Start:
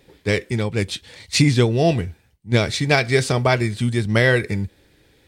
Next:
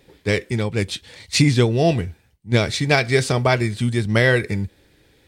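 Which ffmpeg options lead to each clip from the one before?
ffmpeg -i in.wav -af anull out.wav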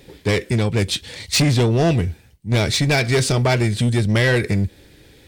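ffmpeg -i in.wav -filter_complex "[0:a]equalizer=frequency=1100:width_type=o:width=2.2:gain=-4,asplit=2[link_01][link_02];[link_02]acompressor=threshold=-25dB:ratio=6,volume=-1dB[link_03];[link_01][link_03]amix=inputs=2:normalize=0,asoftclip=type=tanh:threshold=-15.5dB,volume=3.5dB" out.wav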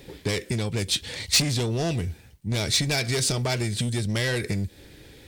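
ffmpeg -i in.wav -filter_complex "[0:a]acrossover=split=3800[link_01][link_02];[link_01]acompressor=threshold=-25dB:ratio=6[link_03];[link_03][link_02]amix=inputs=2:normalize=0,acrusher=bits=11:mix=0:aa=0.000001" out.wav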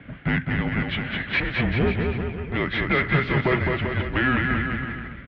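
ffmpeg -i in.wav -af "highpass=frequency=250:width_type=q:width=0.5412,highpass=frequency=250:width_type=q:width=1.307,lowpass=frequency=2700:width_type=q:width=0.5176,lowpass=frequency=2700:width_type=q:width=0.7071,lowpass=frequency=2700:width_type=q:width=1.932,afreqshift=-260,highpass=51,aecho=1:1:210|388.5|540.2|669.2|778.8:0.631|0.398|0.251|0.158|0.1,volume=7dB" out.wav

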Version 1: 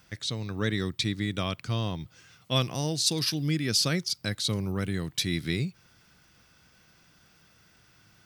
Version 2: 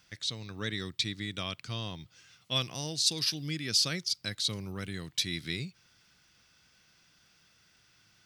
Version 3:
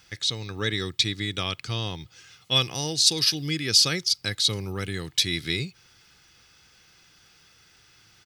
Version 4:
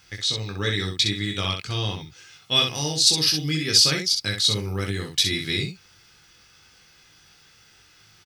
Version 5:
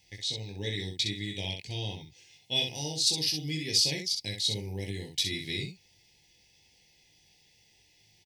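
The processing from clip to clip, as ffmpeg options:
ffmpeg -i in.wav -af "equalizer=frequency=4200:width=0.44:gain=8.5,volume=-9dB" out.wav
ffmpeg -i in.wav -af "aecho=1:1:2.4:0.35,volume=7.5dB" out.wav
ffmpeg -i in.wav -af "aecho=1:1:20|64:0.668|0.562" out.wav
ffmpeg -i in.wav -af "asuperstop=centerf=1300:order=8:qfactor=1.4,volume=-8.5dB" out.wav

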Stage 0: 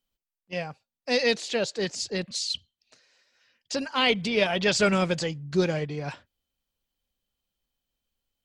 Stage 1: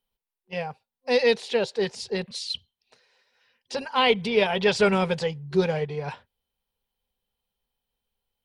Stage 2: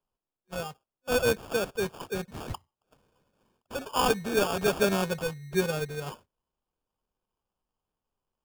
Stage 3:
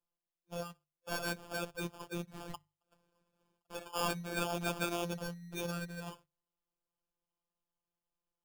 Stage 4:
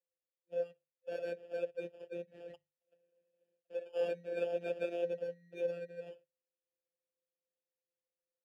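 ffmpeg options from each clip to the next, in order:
ffmpeg -i in.wav -af "superequalizer=6b=0.316:7b=1.78:9b=2:14b=0.631:15b=0.355" out.wav
ffmpeg -i in.wav -af "acrusher=samples=22:mix=1:aa=0.000001,volume=-4.5dB" out.wav
ffmpeg -i in.wav -af "afftfilt=real='hypot(re,im)*cos(PI*b)':imag='0':win_size=1024:overlap=0.75,afftfilt=real='re*lt(hypot(re,im),0.282)':imag='im*lt(hypot(re,im),0.282)':win_size=1024:overlap=0.75,bandreject=frequency=50:width_type=h:width=6,bandreject=frequency=100:width_type=h:width=6,bandreject=frequency=150:width_type=h:width=6,volume=-4dB" out.wav
ffmpeg -i in.wav -filter_complex "[0:a]asplit=3[link_01][link_02][link_03];[link_01]bandpass=frequency=530:width_type=q:width=8,volume=0dB[link_04];[link_02]bandpass=frequency=1840:width_type=q:width=8,volume=-6dB[link_05];[link_03]bandpass=frequency=2480:width_type=q:width=8,volume=-9dB[link_06];[link_04][link_05][link_06]amix=inputs=3:normalize=0,asplit=2[link_07][link_08];[link_08]adynamicsmooth=sensitivity=1.5:basefreq=650,volume=3dB[link_09];[link_07][link_09]amix=inputs=2:normalize=0,volume=3.5dB" out.wav

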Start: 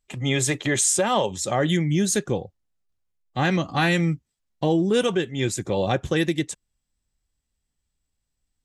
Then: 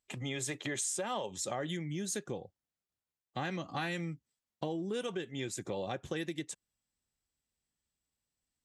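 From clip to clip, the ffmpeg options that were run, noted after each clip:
ffmpeg -i in.wav -af "acompressor=threshold=-29dB:ratio=4,highpass=frequency=170:poles=1,volume=-5dB" out.wav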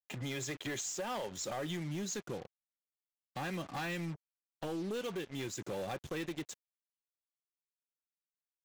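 ffmpeg -i in.wav -af "acompressor=mode=upward:threshold=-59dB:ratio=2.5,aresample=16000,asoftclip=type=hard:threshold=-34dB,aresample=44100,acrusher=bits=7:mix=0:aa=0.5" out.wav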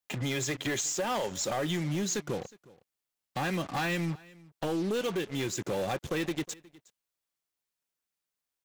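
ffmpeg -i in.wav -af "aecho=1:1:363:0.0708,volume=7.5dB" out.wav

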